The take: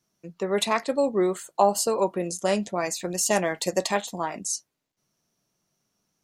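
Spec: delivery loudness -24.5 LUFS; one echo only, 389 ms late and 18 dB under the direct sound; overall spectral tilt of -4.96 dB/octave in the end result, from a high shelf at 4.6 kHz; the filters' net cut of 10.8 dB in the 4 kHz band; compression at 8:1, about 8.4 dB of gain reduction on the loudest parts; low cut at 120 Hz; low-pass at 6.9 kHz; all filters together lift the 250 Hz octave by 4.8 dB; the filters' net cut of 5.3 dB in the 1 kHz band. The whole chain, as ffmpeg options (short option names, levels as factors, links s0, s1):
-af "highpass=120,lowpass=6900,equalizer=f=250:t=o:g=8,equalizer=f=1000:t=o:g=-7,equalizer=f=4000:t=o:g=-7.5,highshelf=f=4600:g=-9,acompressor=threshold=0.0562:ratio=8,aecho=1:1:389:0.126,volume=2.24"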